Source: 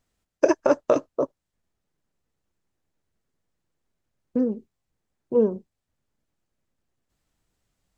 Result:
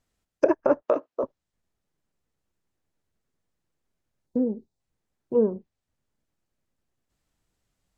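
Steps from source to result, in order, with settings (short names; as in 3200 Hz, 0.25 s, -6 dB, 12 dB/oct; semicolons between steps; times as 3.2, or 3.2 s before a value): 0.82–1.24 Bessel high-pass 390 Hz, order 2; treble ducked by the level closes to 1600 Hz, closed at -19 dBFS; 4.27–4.8 spectral gain 990–3500 Hz -10 dB; gain -1.5 dB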